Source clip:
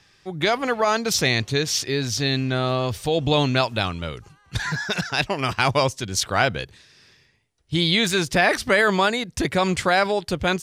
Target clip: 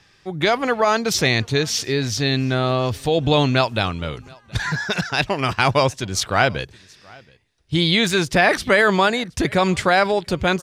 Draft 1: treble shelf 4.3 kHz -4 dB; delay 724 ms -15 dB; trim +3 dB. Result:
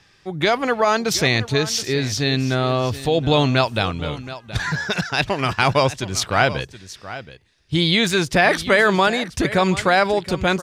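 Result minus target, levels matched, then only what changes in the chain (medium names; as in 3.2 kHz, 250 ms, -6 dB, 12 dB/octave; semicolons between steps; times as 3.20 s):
echo-to-direct +11.5 dB
change: delay 724 ms -26.5 dB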